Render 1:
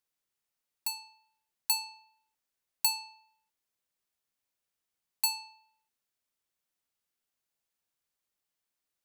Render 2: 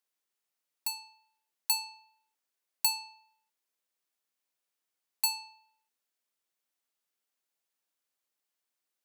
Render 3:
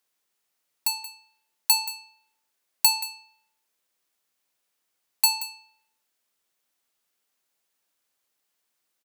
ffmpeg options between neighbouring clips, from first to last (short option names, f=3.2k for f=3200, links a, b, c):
-af "highpass=250"
-af "aecho=1:1:178:0.178,volume=8.5dB"